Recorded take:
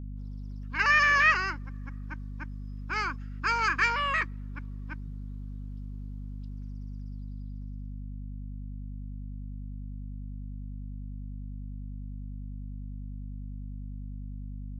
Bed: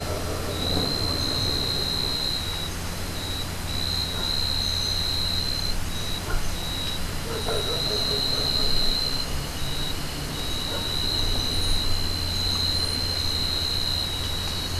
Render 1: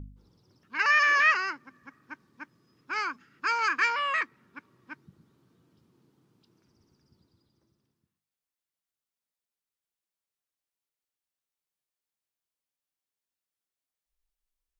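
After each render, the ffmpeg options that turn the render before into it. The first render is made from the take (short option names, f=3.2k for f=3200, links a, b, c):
-af "bandreject=f=50:t=h:w=4,bandreject=f=100:t=h:w=4,bandreject=f=150:t=h:w=4,bandreject=f=200:t=h:w=4,bandreject=f=250:t=h:w=4"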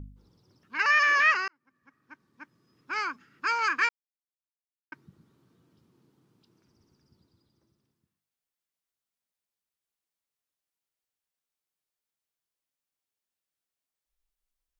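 -filter_complex "[0:a]asplit=4[a][b][c][d];[a]atrim=end=1.48,asetpts=PTS-STARTPTS,afade=t=out:st=1.476:d=0.004:c=hsin[e];[b]atrim=start=1.48:end=3.89,asetpts=PTS-STARTPTS,afade=t=in:d=1.44,afade=t=out:st=2.406:d=0.004:c=hsin[f];[c]atrim=start=3.89:end=4.92,asetpts=PTS-STARTPTS,volume=0[g];[d]atrim=start=4.92,asetpts=PTS-STARTPTS,afade=t=in:d=0.004:c=hsin[h];[e][f][g][h]concat=n=4:v=0:a=1"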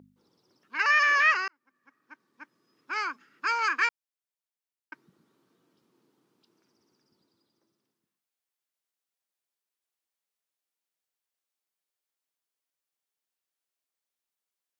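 -af "highpass=290"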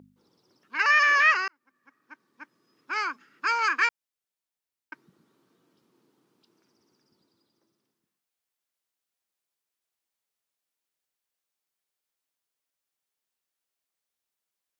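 -af "volume=2dB"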